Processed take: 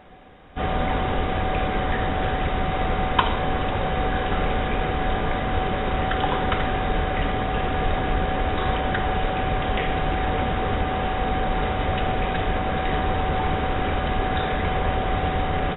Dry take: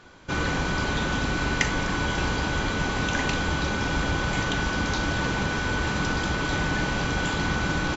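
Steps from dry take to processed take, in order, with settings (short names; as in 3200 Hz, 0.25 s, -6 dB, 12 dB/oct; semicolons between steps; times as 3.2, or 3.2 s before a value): bell 250 Hz -8 dB 0.5 oct; wide varispeed 0.505×; gain +3.5 dB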